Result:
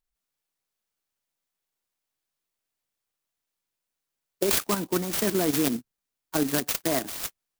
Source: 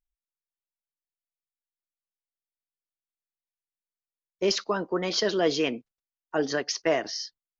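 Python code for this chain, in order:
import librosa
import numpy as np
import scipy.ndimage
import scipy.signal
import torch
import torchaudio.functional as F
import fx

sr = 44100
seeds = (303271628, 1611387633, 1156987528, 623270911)

y = fx.high_shelf(x, sr, hz=3700.0, db=8.0)
y = fx.level_steps(y, sr, step_db=9)
y = fx.graphic_eq(y, sr, hz=(125, 250, 500, 4000), db=(3, 5, -9, -10), at=(4.65, 7.22), fade=0.02)
y = fx.over_compress(y, sr, threshold_db=-28.0, ratio=-0.5)
y = fx.clock_jitter(y, sr, seeds[0], jitter_ms=0.12)
y = F.gain(torch.from_numpy(y), 6.5).numpy()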